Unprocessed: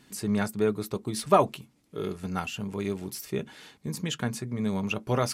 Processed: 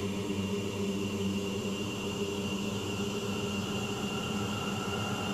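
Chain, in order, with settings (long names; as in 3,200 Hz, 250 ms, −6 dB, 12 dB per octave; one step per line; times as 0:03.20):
slices reordered back to front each 147 ms, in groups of 4
extreme stretch with random phases 32×, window 0.50 s, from 0:02.55
multiband upward and downward compressor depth 40%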